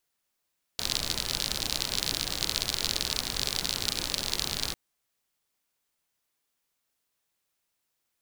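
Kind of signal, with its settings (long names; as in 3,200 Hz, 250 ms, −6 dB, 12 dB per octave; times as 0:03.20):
rain-like ticks over hiss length 3.95 s, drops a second 54, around 4,200 Hz, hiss −5 dB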